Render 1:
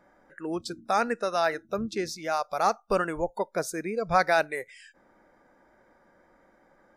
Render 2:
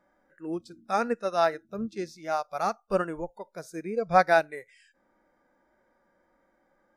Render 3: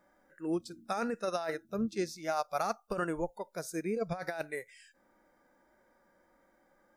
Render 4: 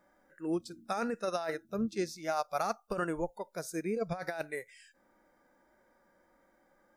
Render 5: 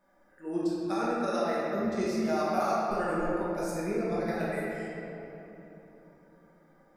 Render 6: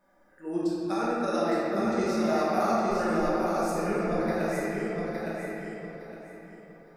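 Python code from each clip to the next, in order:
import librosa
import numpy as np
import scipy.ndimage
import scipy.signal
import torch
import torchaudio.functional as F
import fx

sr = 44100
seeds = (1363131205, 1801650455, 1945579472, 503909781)

y1 = fx.hpss(x, sr, part='percussive', gain_db=-10)
y1 = fx.upward_expand(y1, sr, threshold_db=-41.0, expansion=1.5)
y1 = F.gain(torch.from_numpy(y1), 5.5).numpy()
y2 = fx.high_shelf(y1, sr, hz=6200.0, db=9.0)
y2 = fx.over_compress(y2, sr, threshold_db=-29.0, ratio=-1.0)
y2 = F.gain(torch.from_numpy(y2), -3.5).numpy()
y3 = y2
y4 = fx.room_shoebox(y3, sr, seeds[0], volume_m3=170.0, walls='hard', distance_m=1.2)
y4 = F.gain(torch.from_numpy(y4), -5.0).numpy()
y5 = fx.echo_feedback(y4, sr, ms=862, feedback_pct=25, wet_db=-4.0)
y5 = F.gain(torch.from_numpy(y5), 1.5).numpy()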